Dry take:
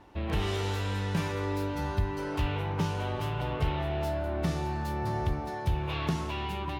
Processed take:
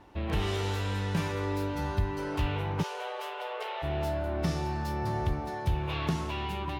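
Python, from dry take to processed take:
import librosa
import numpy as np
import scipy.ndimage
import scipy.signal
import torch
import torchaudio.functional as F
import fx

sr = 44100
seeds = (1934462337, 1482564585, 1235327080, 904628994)

y = fx.cheby1_highpass(x, sr, hz=400.0, order=8, at=(2.82, 3.82), fade=0.02)
y = fx.peak_eq(y, sr, hz=5300.0, db=7.0, octaves=0.21, at=(4.39, 5.07))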